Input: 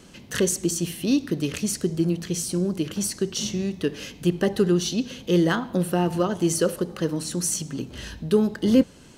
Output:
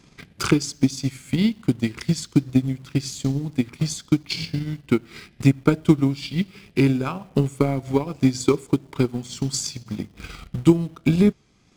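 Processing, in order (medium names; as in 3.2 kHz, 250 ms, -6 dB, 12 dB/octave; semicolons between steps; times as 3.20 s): tape speed -22%; wow and flutter 25 cents; in parallel at -11 dB: bit crusher 6-bit; on the sum: transient shaper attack +11 dB, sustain -6 dB; trim -5.5 dB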